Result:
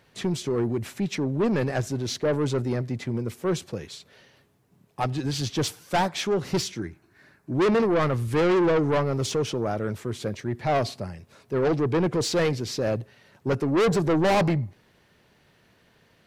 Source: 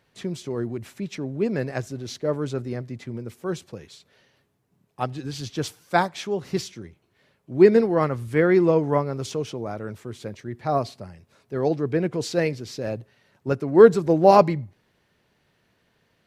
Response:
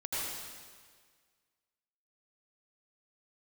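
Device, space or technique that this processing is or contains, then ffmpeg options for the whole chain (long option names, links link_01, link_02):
saturation between pre-emphasis and de-emphasis: -filter_complex "[0:a]asettb=1/sr,asplit=3[link_01][link_02][link_03];[link_01]atrim=end=6.794[link_04];[link_02]atrim=start=6.79:end=7.54,asetpts=PTS-STARTPTS,afade=type=in:duration=0.004:curve=qsin,afade=type=out:start_time=0.746:duration=0.004:curve=qsin,equalizer=frequency=315:width_type=o:width=0.33:gain=7,equalizer=frequency=500:width_type=o:width=0.33:gain=-10,equalizer=frequency=1600:width_type=o:width=0.33:gain=10,equalizer=frequency=3150:width_type=o:width=0.33:gain=-11[link_05];[link_03]atrim=start=7.536[link_06];[link_04][link_05]acrossfade=duration=0.004:curve1=hsin:curve2=qsin[link_07];[link_07][link_06]acrossfade=duration=0.004:curve1=qsin:curve2=hsin,highshelf=frequency=7300:gain=6,asoftclip=type=tanh:threshold=-24.5dB,highshelf=frequency=7300:gain=-6,volume=6dB"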